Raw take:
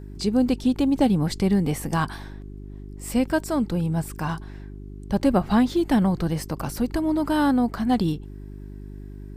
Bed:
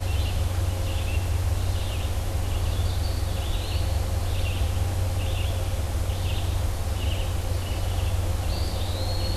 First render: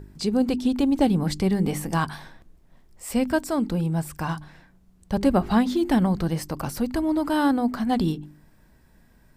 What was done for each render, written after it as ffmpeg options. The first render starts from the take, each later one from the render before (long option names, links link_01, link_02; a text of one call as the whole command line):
ffmpeg -i in.wav -af "bandreject=frequency=50:width_type=h:width=4,bandreject=frequency=100:width_type=h:width=4,bandreject=frequency=150:width_type=h:width=4,bandreject=frequency=200:width_type=h:width=4,bandreject=frequency=250:width_type=h:width=4,bandreject=frequency=300:width_type=h:width=4,bandreject=frequency=350:width_type=h:width=4,bandreject=frequency=400:width_type=h:width=4" out.wav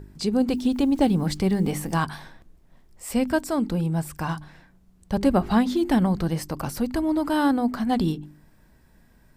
ffmpeg -i in.wav -filter_complex "[0:a]asettb=1/sr,asplit=3[link_01][link_02][link_03];[link_01]atrim=end=0.504[link_04];[link_02]atrim=start=0.5:end=1.94,asetpts=PTS-STARTPTS,afade=type=in:duration=0.004:curve=qsin,afade=type=out:start_time=1.436:duration=0.004:curve=qsin,acrusher=bits=8:mix=0:aa=0.5[link_05];[link_03]atrim=start=1.936[link_06];[link_04][link_05]acrossfade=duration=0.004:curve1=hsin:curve2=qsin[link_07];[link_07][link_06]acrossfade=duration=0.004:curve1=qsin:curve2=hsin" out.wav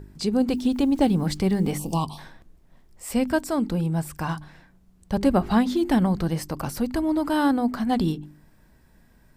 ffmpeg -i in.wav -filter_complex "[0:a]asplit=3[link_01][link_02][link_03];[link_01]afade=type=out:start_time=1.77:duration=0.02[link_04];[link_02]asuperstop=centerf=1700:order=8:qfactor=1.1,afade=type=in:start_time=1.77:duration=0.02,afade=type=out:start_time=2.17:duration=0.02[link_05];[link_03]afade=type=in:start_time=2.17:duration=0.02[link_06];[link_04][link_05][link_06]amix=inputs=3:normalize=0" out.wav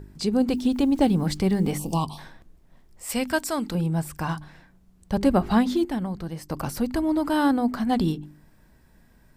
ffmpeg -i in.wav -filter_complex "[0:a]asettb=1/sr,asplit=3[link_01][link_02][link_03];[link_01]atrim=end=3.094[link_04];[link_02]atrim=start=3.09:end=3.75,asetpts=PTS-STARTPTS,afade=type=in:duration=0.004:curve=qsin,afade=type=out:start_time=0.656:duration=0.004:curve=qsin,tiltshelf=frequency=870:gain=-5.5[link_05];[link_03]atrim=start=3.746[link_06];[link_04][link_05]acrossfade=duration=0.004:curve1=hsin:curve2=qsin[link_07];[link_07][link_06]acrossfade=duration=0.004:curve1=qsin:curve2=hsin,asplit=3[link_08][link_09][link_10];[link_08]atrim=end=5.852[link_11];[link_09]atrim=start=5.848:end=6.502,asetpts=PTS-STARTPTS,volume=-8dB[link_12];[link_10]atrim=start=6.498[link_13];[link_11][link_12]acrossfade=duration=0.004:curve1=hsin:curve2=hsin[link_14];[link_14][link_13]acrossfade=duration=0.004:curve1=hsin:curve2=hsin" out.wav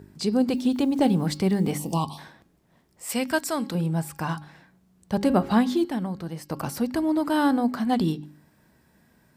ffmpeg -i in.wav -af "highpass=110,bandreject=frequency=273.9:width_type=h:width=4,bandreject=frequency=547.8:width_type=h:width=4,bandreject=frequency=821.7:width_type=h:width=4,bandreject=frequency=1095.6:width_type=h:width=4,bandreject=frequency=1369.5:width_type=h:width=4,bandreject=frequency=1643.4:width_type=h:width=4,bandreject=frequency=1917.3:width_type=h:width=4,bandreject=frequency=2191.2:width_type=h:width=4,bandreject=frequency=2465.1:width_type=h:width=4,bandreject=frequency=2739:width_type=h:width=4,bandreject=frequency=3012.9:width_type=h:width=4,bandreject=frequency=3286.8:width_type=h:width=4,bandreject=frequency=3560.7:width_type=h:width=4,bandreject=frequency=3834.6:width_type=h:width=4,bandreject=frequency=4108.5:width_type=h:width=4,bandreject=frequency=4382.4:width_type=h:width=4,bandreject=frequency=4656.3:width_type=h:width=4,bandreject=frequency=4930.2:width_type=h:width=4,bandreject=frequency=5204.1:width_type=h:width=4,bandreject=frequency=5478:width_type=h:width=4,bandreject=frequency=5751.9:width_type=h:width=4" out.wav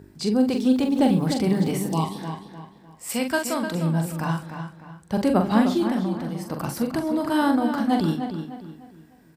ffmpeg -i in.wav -filter_complex "[0:a]asplit=2[link_01][link_02];[link_02]adelay=43,volume=-6dB[link_03];[link_01][link_03]amix=inputs=2:normalize=0,asplit=2[link_04][link_05];[link_05]adelay=302,lowpass=frequency=3900:poles=1,volume=-8dB,asplit=2[link_06][link_07];[link_07]adelay=302,lowpass=frequency=3900:poles=1,volume=0.37,asplit=2[link_08][link_09];[link_09]adelay=302,lowpass=frequency=3900:poles=1,volume=0.37,asplit=2[link_10][link_11];[link_11]adelay=302,lowpass=frequency=3900:poles=1,volume=0.37[link_12];[link_04][link_06][link_08][link_10][link_12]amix=inputs=5:normalize=0" out.wav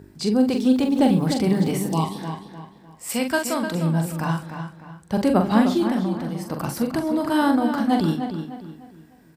ffmpeg -i in.wav -af "volume=1.5dB" out.wav